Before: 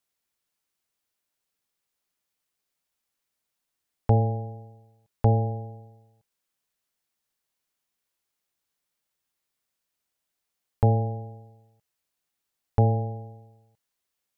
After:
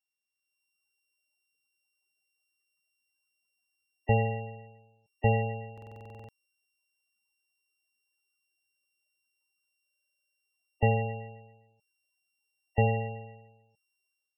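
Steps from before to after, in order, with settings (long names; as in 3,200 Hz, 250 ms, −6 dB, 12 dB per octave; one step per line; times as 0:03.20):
samples sorted by size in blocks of 16 samples
gate on every frequency bin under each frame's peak −20 dB strong
low-shelf EQ 250 Hz −10 dB
automatic gain control gain up to 10 dB
buffer that repeats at 0:05.73/0:09.85, samples 2,048, times 11
level −7.5 dB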